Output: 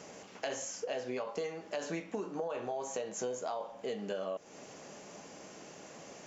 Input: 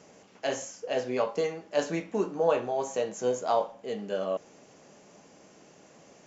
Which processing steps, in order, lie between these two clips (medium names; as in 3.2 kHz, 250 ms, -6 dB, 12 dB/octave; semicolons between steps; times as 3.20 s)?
bass shelf 410 Hz -4 dB; peak limiter -22.5 dBFS, peak gain reduction 10 dB; compression, threshold -41 dBFS, peak gain reduction 13 dB; trim +6 dB